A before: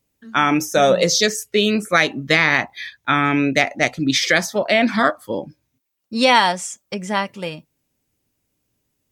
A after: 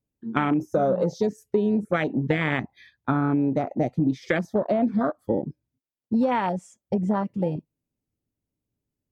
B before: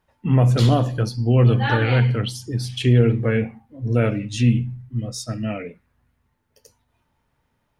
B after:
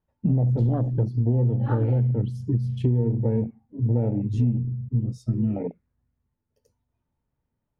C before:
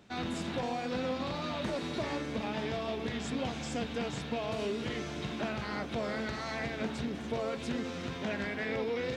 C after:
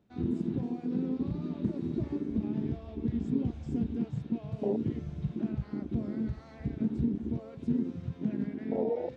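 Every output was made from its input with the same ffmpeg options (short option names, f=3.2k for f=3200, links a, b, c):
-af "tiltshelf=f=750:g=7,afwtdn=0.112,acompressor=threshold=-22dB:ratio=6,volume=2dB"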